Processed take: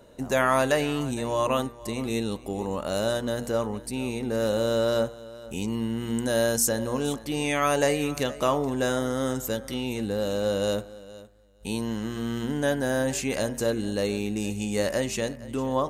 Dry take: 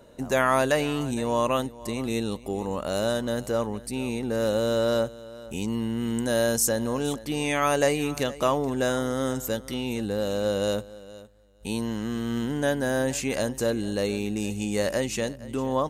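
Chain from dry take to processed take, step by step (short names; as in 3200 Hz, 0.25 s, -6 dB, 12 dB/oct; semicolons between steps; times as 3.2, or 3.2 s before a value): de-hum 78.64 Hz, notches 32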